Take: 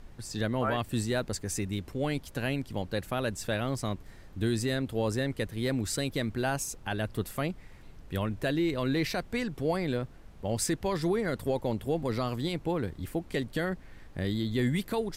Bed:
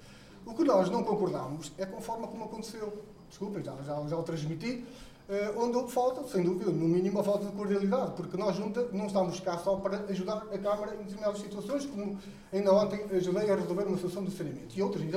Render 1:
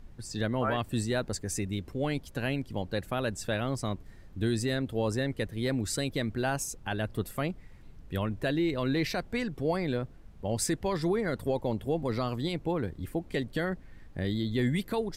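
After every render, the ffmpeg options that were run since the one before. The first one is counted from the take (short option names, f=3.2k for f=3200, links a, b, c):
-af "afftdn=nr=6:nf=-50"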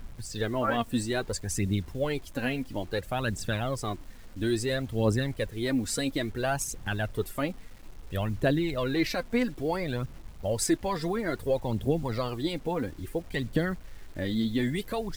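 -af "aphaser=in_gain=1:out_gain=1:delay=4.5:decay=0.56:speed=0.59:type=triangular,acrusher=bits=8:mix=0:aa=0.000001"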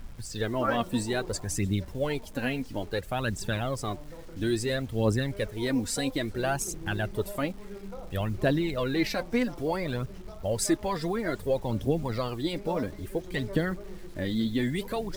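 -filter_complex "[1:a]volume=-13.5dB[a];[0:a][a]amix=inputs=2:normalize=0"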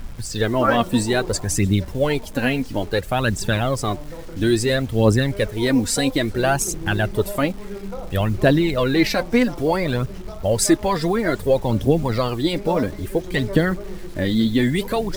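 -af "volume=9.5dB"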